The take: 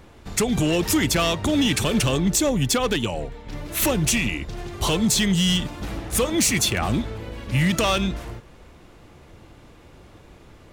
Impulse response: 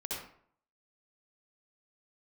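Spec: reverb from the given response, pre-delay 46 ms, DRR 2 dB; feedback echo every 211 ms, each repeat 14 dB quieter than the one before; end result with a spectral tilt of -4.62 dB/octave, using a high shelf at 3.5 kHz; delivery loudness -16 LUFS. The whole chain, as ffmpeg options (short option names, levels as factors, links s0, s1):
-filter_complex "[0:a]highshelf=f=3500:g=-5,aecho=1:1:211|422:0.2|0.0399,asplit=2[s0][s1];[1:a]atrim=start_sample=2205,adelay=46[s2];[s1][s2]afir=irnorm=-1:irlink=0,volume=0.631[s3];[s0][s3]amix=inputs=2:normalize=0,volume=1.68"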